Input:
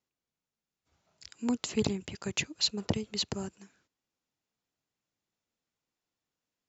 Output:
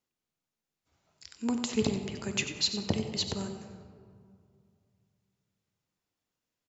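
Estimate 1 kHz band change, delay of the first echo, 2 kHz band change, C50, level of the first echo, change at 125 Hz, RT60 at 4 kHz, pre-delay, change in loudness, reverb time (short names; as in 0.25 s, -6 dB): +1.5 dB, 92 ms, +1.0 dB, 7.0 dB, -11.5 dB, +1.5 dB, 1.1 s, 3 ms, +1.0 dB, 2.3 s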